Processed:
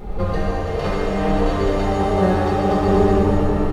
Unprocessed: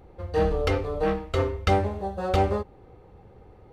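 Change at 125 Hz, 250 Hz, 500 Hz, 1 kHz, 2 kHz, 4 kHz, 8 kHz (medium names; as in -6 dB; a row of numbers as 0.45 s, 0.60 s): +7.5 dB, +13.0 dB, +7.5 dB, +7.5 dB, +6.5 dB, +4.0 dB, +7.0 dB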